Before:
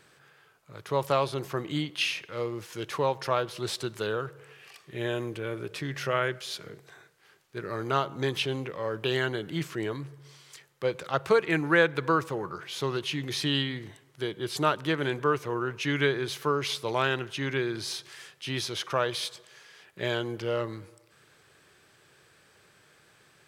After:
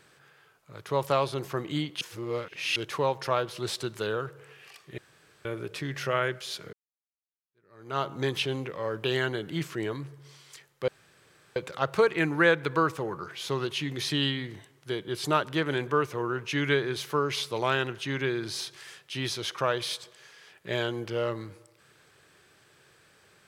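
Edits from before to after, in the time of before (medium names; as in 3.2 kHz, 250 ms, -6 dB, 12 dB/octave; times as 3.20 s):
2.01–2.76 s: reverse
4.98–5.45 s: room tone
6.73–8.02 s: fade in exponential
10.88 s: insert room tone 0.68 s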